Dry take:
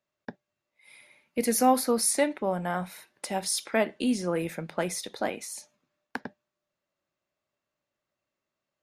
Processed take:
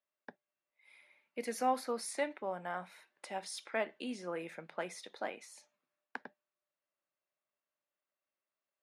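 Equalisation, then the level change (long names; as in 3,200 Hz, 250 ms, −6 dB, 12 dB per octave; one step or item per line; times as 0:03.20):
Chebyshev band-pass filter 150–9,200 Hz, order 2
bass and treble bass −6 dB, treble −11 dB
low-shelf EQ 440 Hz −9 dB
−5.5 dB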